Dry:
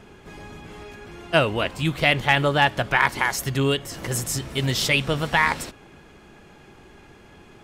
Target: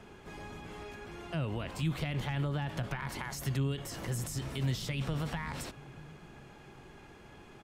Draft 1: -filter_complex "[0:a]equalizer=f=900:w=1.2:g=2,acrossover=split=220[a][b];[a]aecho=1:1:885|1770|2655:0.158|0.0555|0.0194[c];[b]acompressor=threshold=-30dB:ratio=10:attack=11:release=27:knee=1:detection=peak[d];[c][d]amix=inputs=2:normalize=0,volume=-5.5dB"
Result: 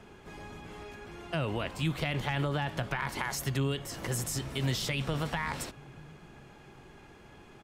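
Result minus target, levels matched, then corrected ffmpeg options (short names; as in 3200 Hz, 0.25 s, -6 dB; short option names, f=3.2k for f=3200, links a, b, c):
compressor: peak gain reduction -7 dB
-filter_complex "[0:a]equalizer=f=900:w=1.2:g=2,acrossover=split=220[a][b];[a]aecho=1:1:885|1770|2655:0.158|0.0555|0.0194[c];[b]acompressor=threshold=-37.5dB:ratio=10:attack=11:release=27:knee=1:detection=peak[d];[c][d]amix=inputs=2:normalize=0,volume=-5.5dB"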